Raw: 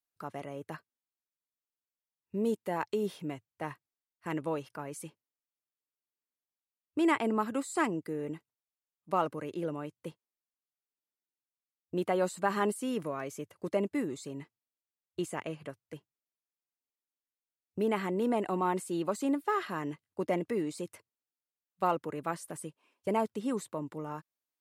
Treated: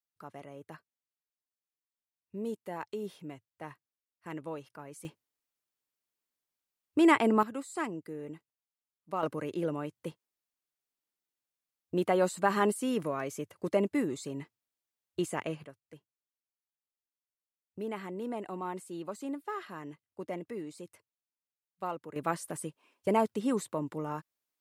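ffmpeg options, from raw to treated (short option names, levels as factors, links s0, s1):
-af "asetnsamples=n=441:p=0,asendcmd='5.05 volume volume 4.5dB;7.43 volume volume -5dB;9.23 volume volume 2.5dB;15.64 volume volume -7.5dB;22.16 volume volume 3dB',volume=0.501"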